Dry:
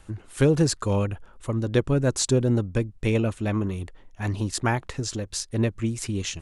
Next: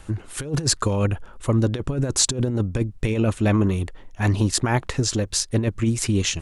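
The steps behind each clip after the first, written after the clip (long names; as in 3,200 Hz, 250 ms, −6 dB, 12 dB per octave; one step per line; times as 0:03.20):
compressor whose output falls as the input rises −24 dBFS, ratio −0.5
level +5 dB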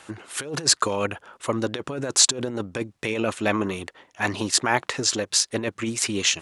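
meter weighting curve A
level +3 dB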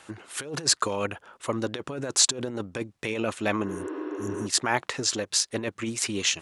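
healed spectral selection 0:03.71–0:04.44, 300–5,600 Hz before
level −3.5 dB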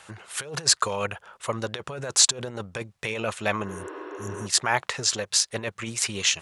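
parametric band 290 Hz −14 dB 0.68 octaves
level +2.5 dB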